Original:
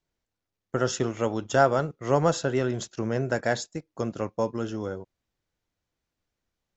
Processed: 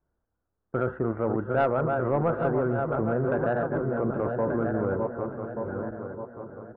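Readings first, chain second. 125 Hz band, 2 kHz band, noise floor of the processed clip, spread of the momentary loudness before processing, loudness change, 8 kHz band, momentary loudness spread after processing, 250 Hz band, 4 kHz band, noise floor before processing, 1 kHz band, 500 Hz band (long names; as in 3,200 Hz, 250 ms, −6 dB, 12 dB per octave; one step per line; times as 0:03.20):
+1.0 dB, −2.5 dB, −81 dBFS, 11 LU, −0.5 dB, can't be measured, 10 LU, +2.0 dB, below −15 dB, below −85 dBFS, −0.5 dB, +1.0 dB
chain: feedback delay that plays each chunk backwards 591 ms, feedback 59%, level −7.5 dB
elliptic low-pass filter 1,500 Hz, stop band 70 dB
parametric band 64 Hz +11.5 dB 0.32 octaves
in parallel at 0 dB: compressor whose output falls as the input rises −31 dBFS, ratio −1
on the sum: soft clipping −10 dBFS, distortion −22 dB
on a send: single-tap delay 821 ms −11.5 dB
on the sum: level −3 dB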